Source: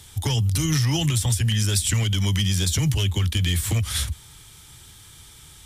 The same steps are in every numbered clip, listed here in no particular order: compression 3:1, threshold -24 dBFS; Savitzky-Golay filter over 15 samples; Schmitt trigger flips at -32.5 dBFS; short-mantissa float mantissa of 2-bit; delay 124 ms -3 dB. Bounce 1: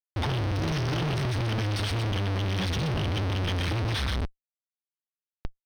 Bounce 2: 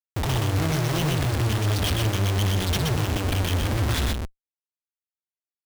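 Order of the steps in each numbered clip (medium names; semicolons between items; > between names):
short-mantissa float > delay > compression > Schmitt trigger > Savitzky-Golay filter; Savitzky-Golay filter > short-mantissa float > Schmitt trigger > compression > delay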